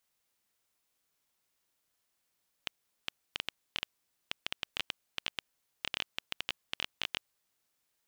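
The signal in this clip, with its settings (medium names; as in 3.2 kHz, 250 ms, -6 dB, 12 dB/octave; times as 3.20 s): random clicks 8.3 per s -14.5 dBFS 4.76 s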